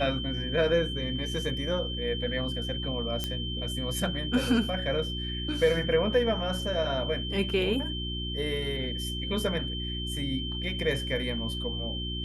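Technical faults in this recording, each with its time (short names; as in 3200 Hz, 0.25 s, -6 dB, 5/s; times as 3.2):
hum 60 Hz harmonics 6 -35 dBFS
tone 3100 Hz -35 dBFS
3.24 pop -15 dBFS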